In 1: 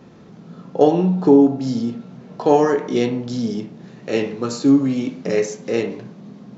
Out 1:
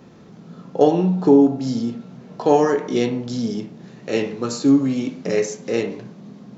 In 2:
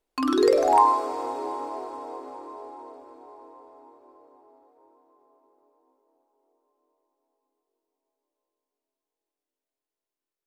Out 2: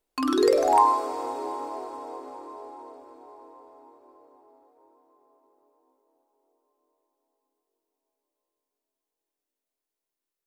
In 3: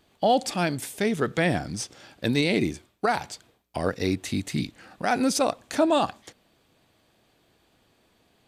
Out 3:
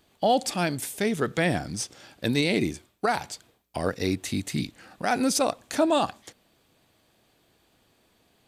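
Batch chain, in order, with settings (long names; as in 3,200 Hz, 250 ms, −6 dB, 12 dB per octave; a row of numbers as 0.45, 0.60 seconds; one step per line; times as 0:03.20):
high-shelf EQ 7,000 Hz +5.5 dB
level −1 dB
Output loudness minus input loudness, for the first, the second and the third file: −1.0, −0.5, −0.5 LU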